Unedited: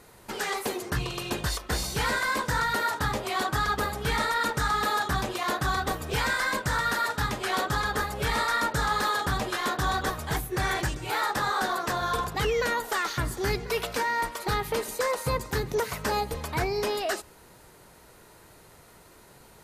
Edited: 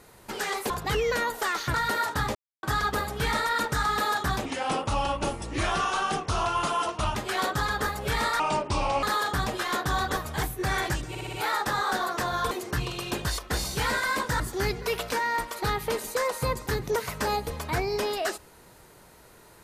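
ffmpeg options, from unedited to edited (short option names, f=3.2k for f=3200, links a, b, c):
-filter_complex "[0:a]asplit=15[a][b][c][d][e][f][g][h][i][j][k][l][m][n][o];[a]atrim=end=0.702[p];[b]atrim=start=12.198:end=13.242[q];[c]atrim=start=2.588:end=3.2,asetpts=PTS-STARTPTS,afade=t=out:st=0.608:d=0.004:c=hsin[r];[d]atrim=start=3.2:end=3.48,asetpts=PTS-STARTPTS,volume=0[s];[e]atrim=start=3.48:end=5.304,asetpts=PTS-STARTPTS,afade=t=in:d=0.004:c=hsin[t];[f]atrim=start=5.3:end=7.3,asetpts=PTS-STARTPTS,asetrate=32634,aresample=44100,atrim=end_sample=119189,asetpts=PTS-STARTPTS[u];[g]atrim=start=7.296:end=8.544[v];[h]atrim=start=8.54:end=8.96,asetpts=PTS-STARTPTS,asetrate=29106,aresample=44100[w];[i]atrim=start=8.956:end=11.082[x];[j]atrim=start=11.018:end=11.082[y];[k]atrim=start=11.018:end=11.082[z];[l]atrim=start=11.018:end=11.082[aa];[m]atrim=start=11.018:end=12.202[ab];[n]atrim=start=0.698:end=2.592[ac];[o]atrim=start=13.238[ad];[p][q]acrossfade=d=0.004:c1=hsin:c2=hsin[ae];[r][s][t]concat=n=3:v=0:a=1[af];[ae][af]acrossfade=d=0.004:c1=hsin:c2=hsin[ag];[ag][u]acrossfade=d=0.004:c1=hsin:c2=hsin[ah];[ah][v]acrossfade=d=0.004:c1=hsin:c2=hsin[ai];[ai][w]acrossfade=d=0.004:c1=hsin:c2=hsin[aj];[aj][x]acrossfade=d=0.004:c1=hsin:c2=hsin[ak];[ak][y]acrossfade=d=0.004:c1=hsin:c2=hsin[al];[al][z]acrossfade=d=0.004:c1=hsin:c2=hsin[am];[am][aa]acrossfade=d=0.004:c1=hsin:c2=hsin[an];[an][ab]acrossfade=d=0.004:c1=hsin:c2=hsin[ao];[ao][ac]acrossfade=d=0.004:c1=hsin:c2=hsin[ap];[ap][ad]acrossfade=d=0.004:c1=hsin:c2=hsin"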